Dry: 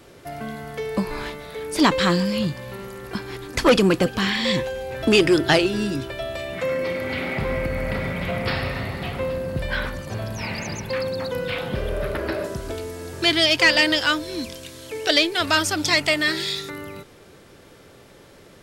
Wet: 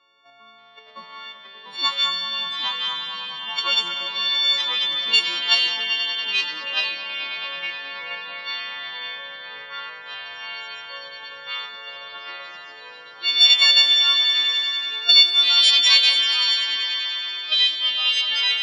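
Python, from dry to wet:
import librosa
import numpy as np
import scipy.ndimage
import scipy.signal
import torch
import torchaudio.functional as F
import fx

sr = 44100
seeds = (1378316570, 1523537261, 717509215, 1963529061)

p1 = fx.freq_snap(x, sr, grid_st=4)
p2 = np.diff(p1, prepend=0.0)
p3 = fx.level_steps(p2, sr, step_db=18)
p4 = p2 + (p3 * librosa.db_to_amplitude(-2.0))
p5 = fx.cabinet(p4, sr, low_hz=120.0, low_slope=12, high_hz=4900.0, hz=(390.0, 1100.0, 1800.0, 3500.0), db=(-5, 9, -6, 8))
p6 = p5 + fx.echo_swell(p5, sr, ms=96, loudest=5, wet_db=-12.5, dry=0)
p7 = fx.echo_pitch(p6, sr, ms=580, semitones=-2, count=2, db_per_echo=-6.0)
p8 = fx.env_lowpass(p7, sr, base_hz=1700.0, full_db=-9.5)
y = p8 * librosa.db_to_amplitude(-2.5)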